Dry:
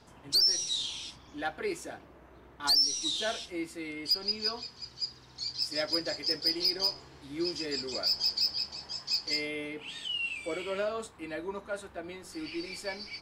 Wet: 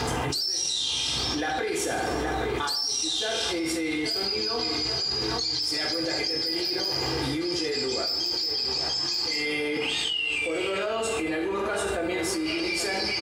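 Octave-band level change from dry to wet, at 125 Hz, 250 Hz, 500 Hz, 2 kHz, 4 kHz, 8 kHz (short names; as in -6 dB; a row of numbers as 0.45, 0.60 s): +14.0, +9.0, +8.5, +9.5, +4.0, +7.0 dB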